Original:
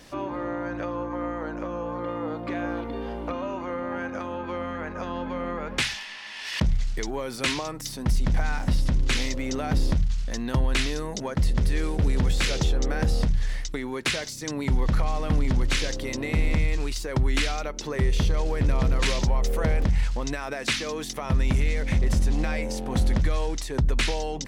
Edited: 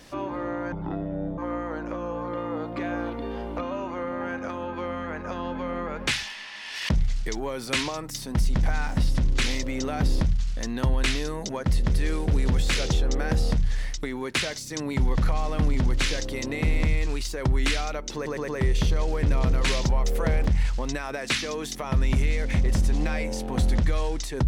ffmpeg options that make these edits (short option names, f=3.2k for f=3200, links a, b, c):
-filter_complex "[0:a]asplit=6[a][b][c][d][e][f];[a]atrim=end=0.724[g];[b]atrim=start=0.72:end=1.09,asetpts=PTS-STARTPTS,asetrate=24696,aresample=44100,atrim=end_sample=29137,asetpts=PTS-STARTPTS[h];[c]atrim=start=1.086:end=17.972[i];[d]atrim=start=17.858:end=17.972[j];[e]atrim=start=17.858:end=17.972[k];[f]atrim=start=17.858[l];[g][h]acrossfade=d=0.004:c1=hsin:c2=hsin[m];[m][i]acrossfade=d=0.004:c1=hsin:c2=hsin[n];[n][j]acrossfade=d=0.004:c1=hsin:c2=hsin[o];[o][k]acrossfade=d=0.004:c1=hsin:c2=hsin[p];[p][l]acrossfade=d=0.004:c1=hsin:c2=hsin"